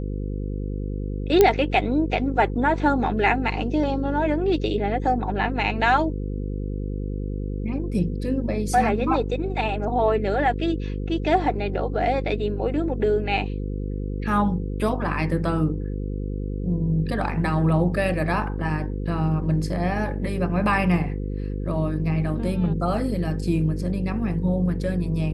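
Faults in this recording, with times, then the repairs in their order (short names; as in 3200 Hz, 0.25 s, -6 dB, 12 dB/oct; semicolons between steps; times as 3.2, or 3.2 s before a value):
buzz 50 Hz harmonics 10 -28 dBFS
1.41 pop -3 dBFS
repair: de-click; de-hum 50 Hz, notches 10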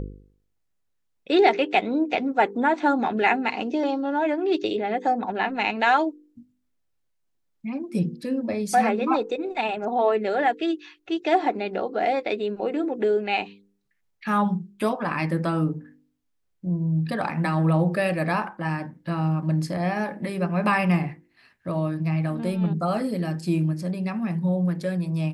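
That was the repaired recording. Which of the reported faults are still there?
none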